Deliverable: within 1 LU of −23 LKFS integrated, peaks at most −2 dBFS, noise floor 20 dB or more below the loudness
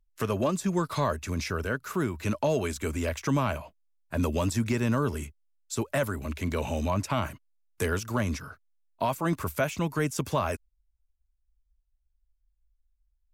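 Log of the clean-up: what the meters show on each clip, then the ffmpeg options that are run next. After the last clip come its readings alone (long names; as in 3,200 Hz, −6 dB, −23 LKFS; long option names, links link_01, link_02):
integrated loudness −30.0 LKFS; sample peak −16.5 dBFS; target loudness −23.0 LKFS
→ -af "volume=7dB"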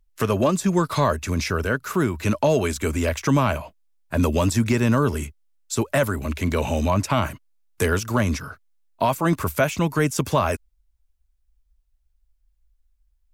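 integrated loudness −23.0 LKFS; sample peak −9.5 dBFS; background noise floor −67 dBFS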